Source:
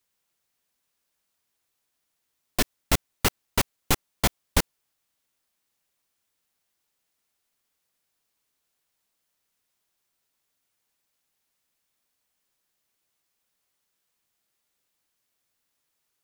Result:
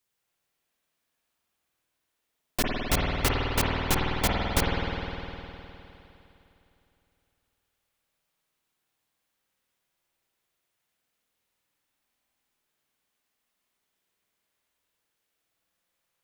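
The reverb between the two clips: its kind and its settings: spring tank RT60 3.1 s, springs 51 ms, chirp 40 ms, DRR -3.5 dB; trim -3.5 dB

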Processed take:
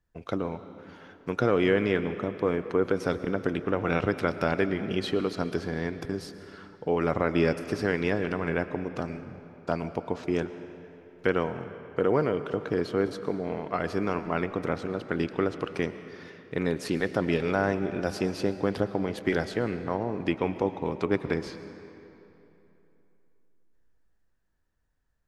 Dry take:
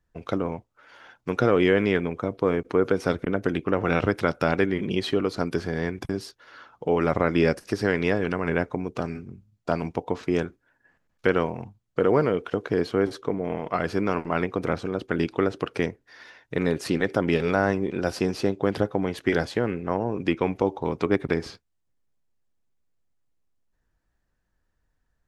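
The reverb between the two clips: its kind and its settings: algorithmic reverb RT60 3.1 s, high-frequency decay 0.75×, pre-delay 75 ms, DRR 11.5 dB; trim -3.5 dB

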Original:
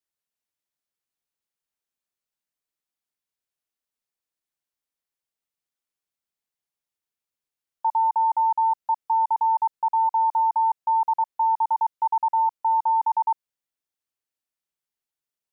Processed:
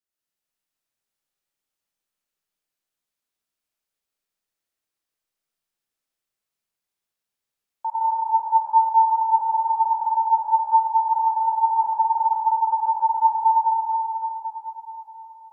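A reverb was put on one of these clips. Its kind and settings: algorithmic reverb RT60 4.3 s, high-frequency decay 0.95×, pre-delay 45 ms, DRR -8 dB; trim -4 dB

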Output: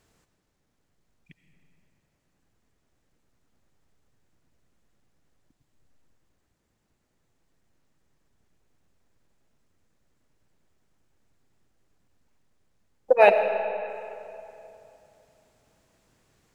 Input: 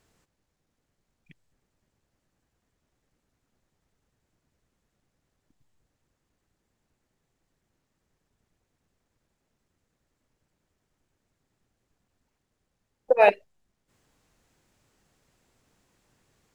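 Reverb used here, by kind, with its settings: algorithmic reverb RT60 2.9 s, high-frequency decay 0.7×, pre-delay 45 ms, DRR 7.5 dB; trim +1.5 dB

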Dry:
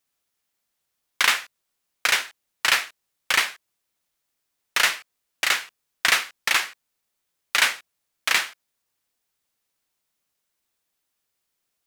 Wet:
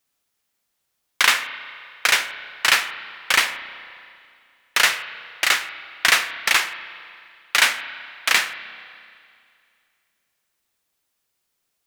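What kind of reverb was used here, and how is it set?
spring tank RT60 2.3 s, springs 31/35 ms, chirp 35 ms, DRR 11 dB; trim +3 dB

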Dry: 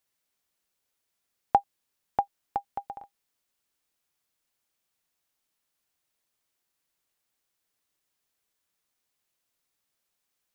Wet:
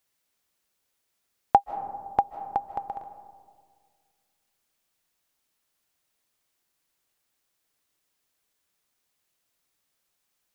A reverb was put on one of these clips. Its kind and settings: algorithmic reverb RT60 1.9 s, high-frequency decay 0.25×, pre-delay 115 ms, DRR 12 dB; trim +3.5 dB

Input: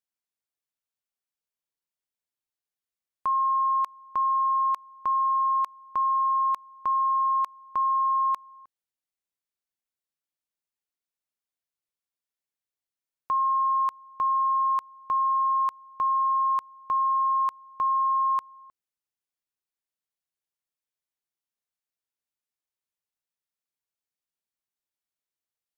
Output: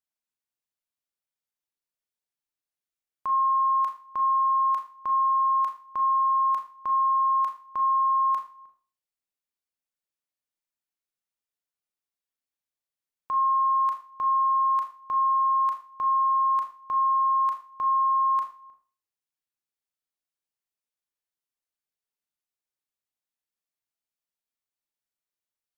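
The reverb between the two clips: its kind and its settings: Schroeder reverb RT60 0.38 s, combs from 26 ms, DRR 3.5 dB; trim -3.5 dB

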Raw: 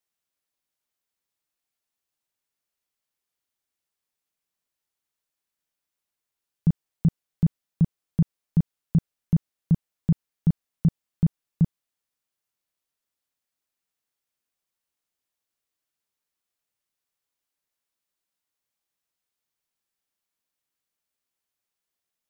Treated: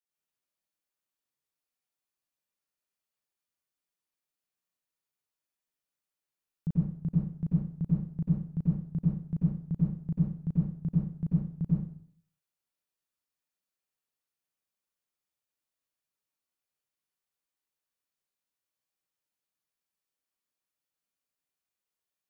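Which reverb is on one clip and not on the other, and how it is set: plate-style reverb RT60 0.58 s, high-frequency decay 0.85×, pre-delay 80 ms, DRR -6.5 dB; trim -12 dB

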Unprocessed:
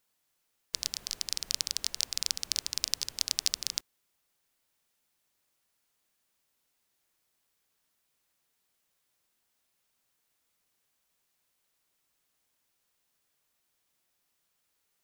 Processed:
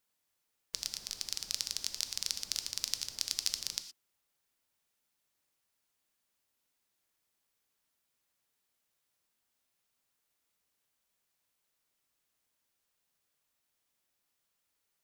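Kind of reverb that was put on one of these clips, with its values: gated-style reverb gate 140 ms flat, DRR 9.5 dB; trim -4.5 dB

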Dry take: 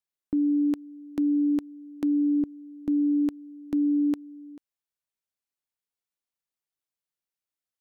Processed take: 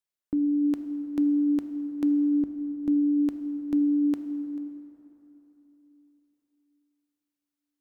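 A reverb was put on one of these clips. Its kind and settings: plate-style reverb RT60 3.6 s, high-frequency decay 0.55×, DRR 8.5 dB; trim -1 dB

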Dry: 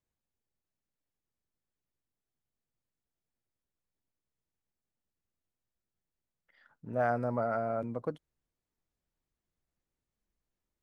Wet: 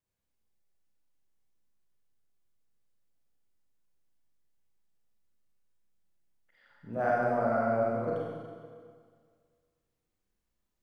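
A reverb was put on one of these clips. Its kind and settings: Schroeder reverb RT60 1.9 s, combs from 31 ms, DRR -5.5 dB; trim -3 dB

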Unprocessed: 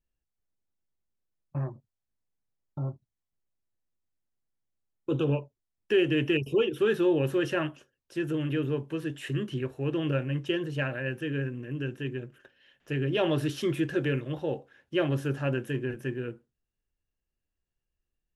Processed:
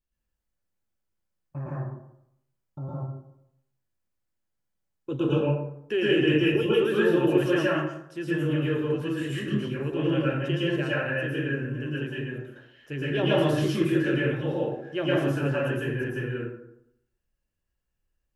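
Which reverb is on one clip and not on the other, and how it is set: plate-style reverb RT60 0.76 s, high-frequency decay 0.5×, pre-delay 100 ms, DRR -7.5 dB; trim -3.5 dB

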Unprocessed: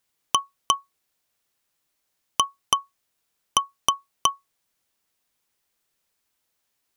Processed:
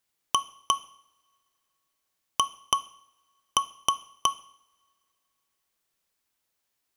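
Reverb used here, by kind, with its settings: two-slope reverb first 0.61 s, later 2.7 s, from -26 dB, DRR 14 dB; trim -3.5 dB

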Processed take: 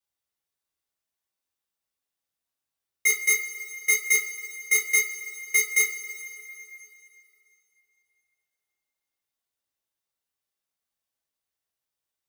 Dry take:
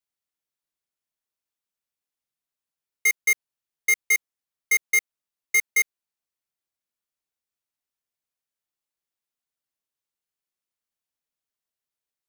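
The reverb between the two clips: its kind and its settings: two-slope reverb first 0.29 s, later 3 s, from -18 dB, DRR -3 dB; trim -2.5 dB

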